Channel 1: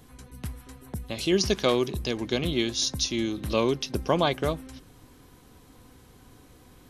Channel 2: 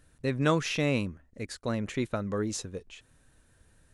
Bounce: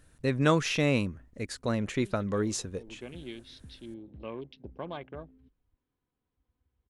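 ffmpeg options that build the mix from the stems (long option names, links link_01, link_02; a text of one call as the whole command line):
ffmpeg -i stem1.wav -i stem2.wav -filter_complex "[0:a]afwtdn=0.0178,lowpass=frequency=3500:width=0.5412,lowpass=frequency=3500:width=1.3066,adelay=700,volume=-15.5dB[link_01];[1:a]volume=1.5dB,asplit=2[link_02][link_03];[link_03]apad=whole_len=334753[link_04];[link_01][link_04]sidechaincompress=threshold=-46dB:ratio=3:attack=16:release=102[link_05];[link_05][link_02]amix=inputs=2:normalize=0" out.wav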